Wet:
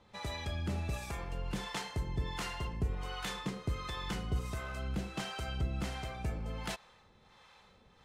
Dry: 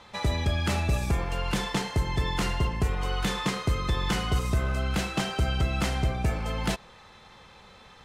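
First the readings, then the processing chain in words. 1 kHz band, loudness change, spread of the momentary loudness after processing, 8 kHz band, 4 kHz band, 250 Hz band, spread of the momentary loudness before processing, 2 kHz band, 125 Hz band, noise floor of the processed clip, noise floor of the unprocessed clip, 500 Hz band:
-10.5 dB, -10.5 dB, 3 LU, -10.0 dB, -10.0 dB, -10.5 dB, 3 LU, -10.0 dB, -10.5 dB, -63 dBFS, -52 dBFS, -10.5 dB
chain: harmonic tremolo 1.4 Hz, depth 70%, crossover 550 Hz; gain -7 dB

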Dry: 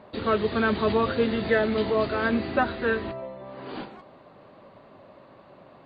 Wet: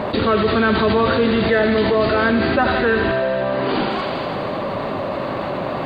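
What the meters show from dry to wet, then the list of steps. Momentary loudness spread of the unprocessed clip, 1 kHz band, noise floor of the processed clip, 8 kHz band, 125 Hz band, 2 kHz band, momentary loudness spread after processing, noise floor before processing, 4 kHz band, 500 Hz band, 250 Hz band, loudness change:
15 LU, +9.5 dB, -25 dBFS, n/a, +10.5 dB, +9.0 dB, 8 LU, -52 dBFS, +11.0 dB, +8.5 dB, +9.0 dB, +6.5 dB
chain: thinning echo 82 ms, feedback 77%, high-pass 680 Hz, level -9.5 dB; fast leveller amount 70%; gain +4 dB

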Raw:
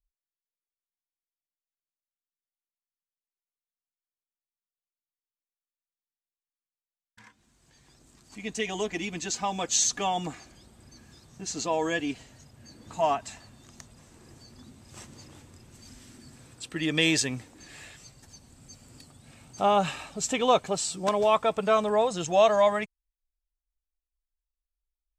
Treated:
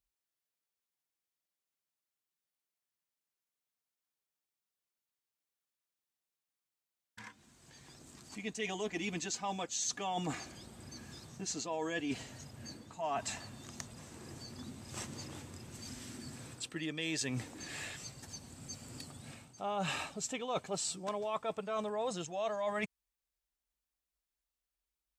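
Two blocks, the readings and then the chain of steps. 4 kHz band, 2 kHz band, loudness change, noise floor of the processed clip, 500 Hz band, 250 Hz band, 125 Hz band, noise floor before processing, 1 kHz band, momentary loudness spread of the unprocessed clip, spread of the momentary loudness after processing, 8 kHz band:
-9.5 dB, -8.5 dB, -13.0 dB, under -85 dBFS, -13.0 dB, -8.5 dB, -6.0 dB, under -85 dBFS, -12.0 dB, 16 LU, 14 LU, -9.0 dB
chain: HPF 79 Hz 12 dB/oct; reverse; compressor 8:1, threshold -38 dBFS, peak gain reduction 21.5 dB; reverse; gain +3.5 dB

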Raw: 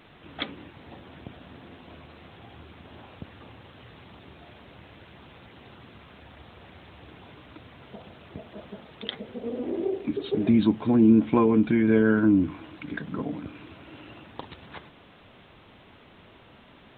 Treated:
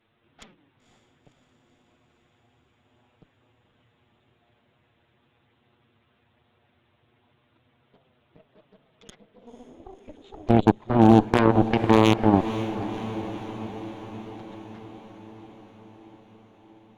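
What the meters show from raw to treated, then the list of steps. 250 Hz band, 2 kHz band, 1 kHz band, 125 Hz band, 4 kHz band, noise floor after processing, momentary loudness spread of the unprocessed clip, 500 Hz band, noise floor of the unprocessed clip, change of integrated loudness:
-0.5 dB, +1.0 dB, +10.0 dB, +6.0 dB, +2.5 dB, -67 dBFS, 24 LU, +2.5 dB, -53 dBFS, +2.5 dB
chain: in parallel at +2 dB: level quantiser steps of 21 dB; on the sum: wavefolder -5.5 dBFS; envelope flanger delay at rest 9.2 ms, full sweep at -11.5 dBFS; added harmonics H 3 -8 dB, 5 -38 dB, 6 -25 dB, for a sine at -5.5 dBFS; diffused feedback echo 0.515 s, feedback 67%, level -12.5 dB; gain +1 dB

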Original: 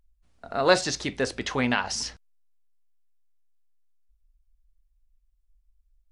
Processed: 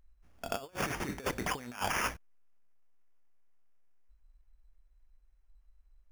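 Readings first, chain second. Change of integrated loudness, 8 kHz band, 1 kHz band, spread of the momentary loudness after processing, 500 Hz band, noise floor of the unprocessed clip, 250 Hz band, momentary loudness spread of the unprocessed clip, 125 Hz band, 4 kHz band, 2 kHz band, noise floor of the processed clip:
-9.5 dB, -8.5 dB, -6.5 dB, 8 LU, -14.0 dB, -68 dBFS, -11.0 dB, 10 LU, -7.0 dB, -11.5 dB, -8.0 dB, -66 dBFS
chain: negative-ratio compressor -32 dBFS, ratio -0.5; sample-rate reducer 4000 Hz, jitter 0%; gain -3.5 dB

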